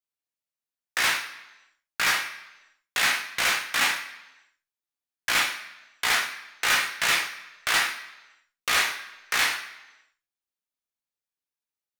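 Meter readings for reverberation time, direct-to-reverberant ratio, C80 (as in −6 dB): 1.0 s, 1.0 dB, 11.5 dB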